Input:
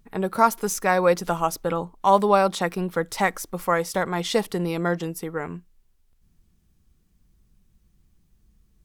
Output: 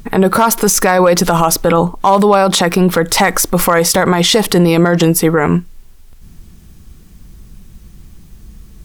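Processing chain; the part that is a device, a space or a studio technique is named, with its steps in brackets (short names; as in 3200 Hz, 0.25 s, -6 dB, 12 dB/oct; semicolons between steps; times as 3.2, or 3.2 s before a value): loud club master (compressor 2:1, threshold -23 dBFS, peak gain reduction 7 dB; hard clip -14.5 dBFS, distortion -25 dB; maximiser +25 dB); gain -1 dB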